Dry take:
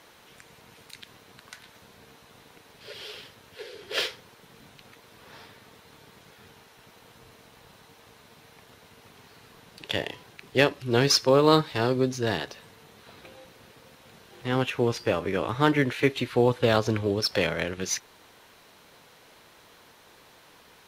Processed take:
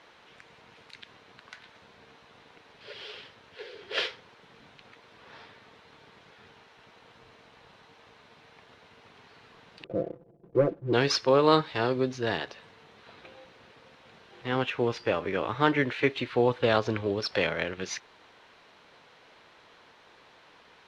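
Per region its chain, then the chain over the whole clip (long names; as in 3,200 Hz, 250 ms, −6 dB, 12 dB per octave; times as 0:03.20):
0:09.84–0:10.93: Butterworth low-pass 630 Hz 48 dB per octave + leveller curve on the samples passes 1 + comb filter 5.9 ms, depth 75%
whole clip: low-pass filter 3,800 Hz 12 dB per octave; low-shelf EQ 310 Hz −6.5 dB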